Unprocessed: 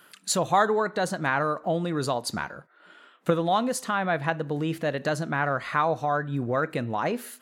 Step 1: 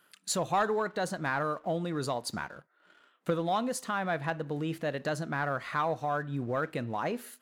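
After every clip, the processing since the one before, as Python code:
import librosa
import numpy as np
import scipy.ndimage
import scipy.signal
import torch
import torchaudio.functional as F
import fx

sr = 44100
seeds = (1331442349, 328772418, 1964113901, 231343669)

y = fx.leveller(x, sr, passes=1)
y = y * 10.0 ** (-9.0 / 20.0)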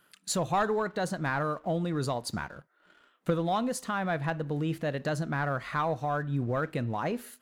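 y = fx.low_shelf(x, sr, hz=130.0, db=11.5)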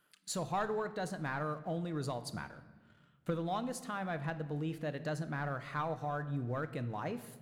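y = fx.room_shoebox(x, sr, seeds[0], volume_m3=1100.0, walls='mixed', distance_m=0.45)
y = y * 10.0 ** (-8.0 / 20.0)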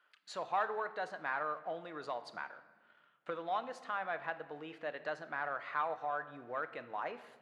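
y = fx.bandpass_edges(x, sr, low_hz=670.0, high_hz=2700.0)
y = y * 10.0 ** (3.5 / 20.0)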